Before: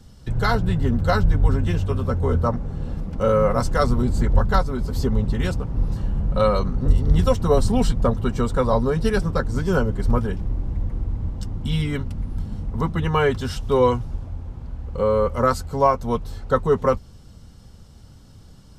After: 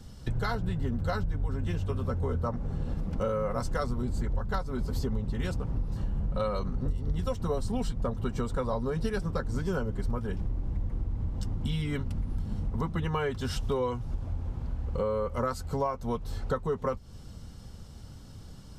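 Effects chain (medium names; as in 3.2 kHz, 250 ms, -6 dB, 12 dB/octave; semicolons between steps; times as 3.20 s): compression, threshold -27 dBFS, peak gain reduction 17 dB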